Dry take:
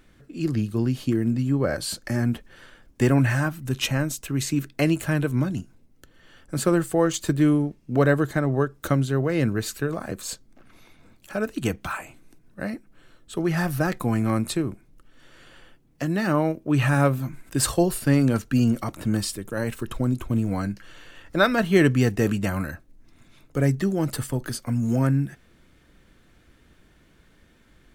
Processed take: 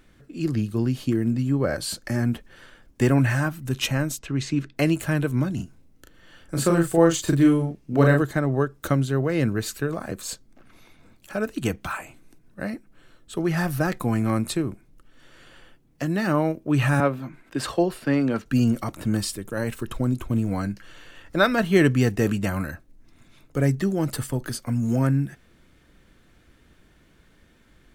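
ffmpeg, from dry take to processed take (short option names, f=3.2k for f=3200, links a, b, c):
-filter_complex "[0:a]asplit=3[a][b][c];[a]afade=t=out:st=4.18:d=0.02[d];[b]lowpass=4.9k,afade=t=in:st=4.18:d=0.02,afade=t=out:st=4.75:d=0.02[e];[c]afade=t=in:st=4.75:d=0.02[f];[d][e][f]amix=inputs=3:normalize=0,asettb=1/sr,asplit=3[g][h][i];[g]atrim=end=5.554[j];[h]atrim=start=5.55:end=8.22,asetpts=PTS-STARTPTS,afade=t=in:d=0.004:c=qsin,afade=t=out:st=2.666:d=0.004:c=qsin,asplit=2[k][l];[l]adelay=36,volume=-3dB[m];[k][m]amix=inputs=2:normalize=0,atrim=end_sample=117747[n];[i]atrim=start=8.216[o];[j][n]acrossfade=d=0.004:c1=hsin:c2=qsin[p];[p][o]acrossfade=d=0.004:c1=qsin:c2=hsin,asettb=1/sr,asplit=3[q][r][s];[q]atrim=end=17.004[t];[r]atrim=start=17:end=18.46,asetpts=PTS-STARTPTS,afade=t=in:d=0.004:c=qsin,afade=t=out:st=1.456:d=0.004:c=qsin,acrossover=split=190 4400:gain=0.251 1 0.178[u][v][w];[u][v][w]amix=inputs=3:normalize=0[x];[s]atrim=start=18.456[y];[t][x]acrossfade=d=0.004:c1=hsin:c2=qsin[z];[z][y]acrossfade=d=0.004:c1=qsin:c2=hsin"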